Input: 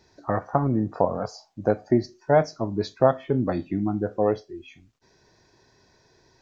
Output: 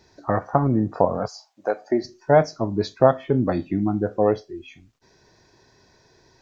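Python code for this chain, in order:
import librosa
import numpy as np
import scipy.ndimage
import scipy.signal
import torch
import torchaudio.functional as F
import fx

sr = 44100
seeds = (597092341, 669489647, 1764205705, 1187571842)

y = fx.highpass(x, sr, hz=fx.line((1.27, 1300.0), (2.03, 310.0)), slope=12, at=(1.27, 2.03), fade=0.02)
y = y * librosa.db_to_amplitude(3.0)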